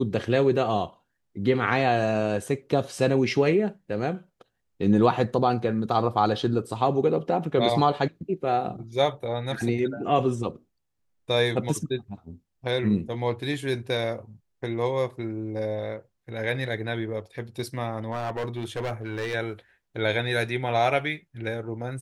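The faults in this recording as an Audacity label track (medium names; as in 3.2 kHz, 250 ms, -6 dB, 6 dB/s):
18.110000	19.350000	clipped -25.5 dBFS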